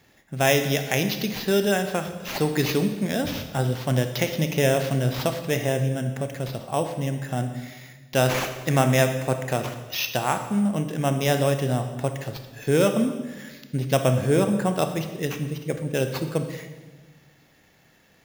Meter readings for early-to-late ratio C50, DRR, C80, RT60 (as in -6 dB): 8.5 dB, 7.0 dB, 10.0 dB, 1.3 s